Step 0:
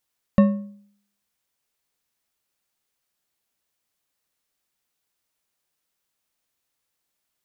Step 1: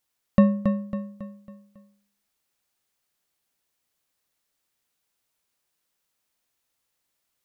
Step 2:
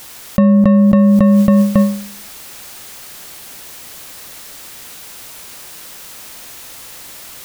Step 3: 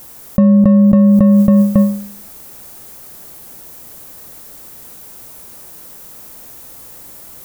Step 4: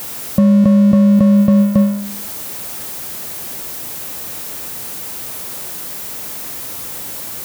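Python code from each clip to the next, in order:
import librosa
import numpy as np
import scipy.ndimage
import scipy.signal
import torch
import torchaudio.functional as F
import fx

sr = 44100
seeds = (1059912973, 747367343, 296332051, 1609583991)

y1 = fx.echo_feedback(x, sr, ms=275, feedback_pct=43, wet_db=-7)
y2 = fx.env_flatten(y1, sr, amount_pct=100)
y2 = y2 * 10.0 ** (3.5 / 20.0)
y3 = fx.peak_eq(y2, sr, hz=3100.0, db=-13.5, octaves=2.9)
y3 = y3 * 10.0 ** (1.5 / 20.0)
y4 = y3 + 0.5 * 10.0 ** (-21.5 / 20.0) * np.sign(y3)
y4 = scipy.signal.sosfilt(scipy.signal.butter(2, 70.0, 'highpass', fs=sr, output='sos'), y4)
y4 = y4 * 10.0 ** (-2.0 / 20.0)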